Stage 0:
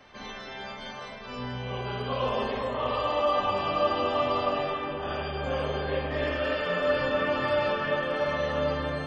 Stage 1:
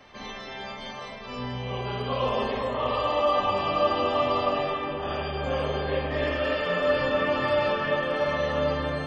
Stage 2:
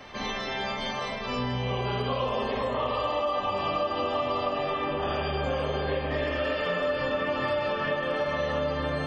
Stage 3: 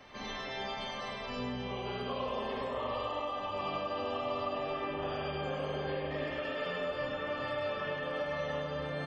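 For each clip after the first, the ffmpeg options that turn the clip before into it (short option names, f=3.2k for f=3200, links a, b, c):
-af "bandreject=f=1.5k:w=14,volume=2dB"
-af "acompressor=threshold=-32dB:ratio=6,volume=6.5dB"
-af "aecho=1:1:101:0.631,volume=-9dB"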